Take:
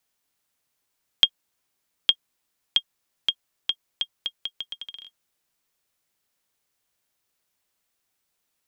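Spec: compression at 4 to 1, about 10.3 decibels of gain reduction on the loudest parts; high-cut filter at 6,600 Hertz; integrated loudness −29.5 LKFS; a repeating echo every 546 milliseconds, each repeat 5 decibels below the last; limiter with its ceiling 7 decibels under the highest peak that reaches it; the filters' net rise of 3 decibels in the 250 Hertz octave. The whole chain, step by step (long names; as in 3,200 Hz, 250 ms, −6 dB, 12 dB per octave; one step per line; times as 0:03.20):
low-pass filter 6,600 Hz
parametric band 250 Hz +4 dB
downward compressor 4 to 1, threshold −28 dBFS
brickwall limiter −13 dBFS
repeating echo 546 ms, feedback 56%, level −5 dB
level +8.5 dB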